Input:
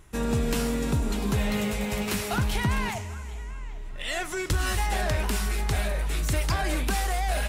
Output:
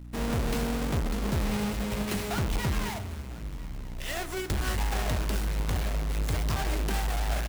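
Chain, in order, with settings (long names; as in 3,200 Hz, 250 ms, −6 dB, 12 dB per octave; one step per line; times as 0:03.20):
each half-wave held at its own peak
hum removal 60.68 Hz, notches 29
mains hum 60 Hz, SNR 14 dB
on a send: single-tap delay 997 ms −21 dB
on the sum: level −7 dB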